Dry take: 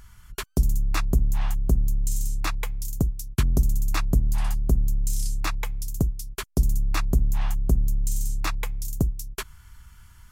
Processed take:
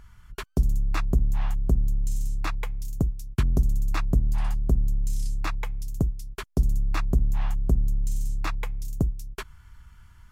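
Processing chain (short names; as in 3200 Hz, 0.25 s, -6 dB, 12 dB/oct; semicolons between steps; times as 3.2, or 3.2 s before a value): high shelf 4600 Hz -11.5 dB; gain -1 dB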